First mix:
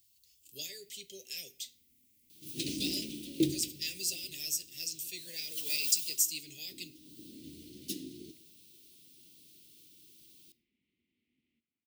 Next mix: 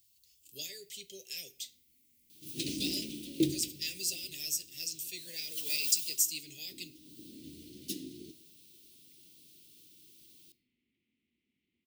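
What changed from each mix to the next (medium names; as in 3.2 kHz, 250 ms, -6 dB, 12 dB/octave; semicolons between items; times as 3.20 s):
first sound: entry +0.75 s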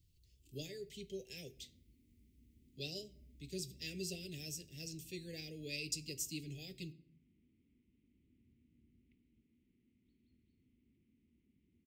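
second sound: muted; master: add tilt EQ -4.5 dB/octave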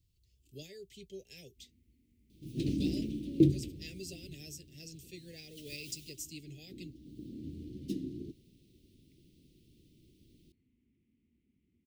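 second sound: unmuted; reverb: off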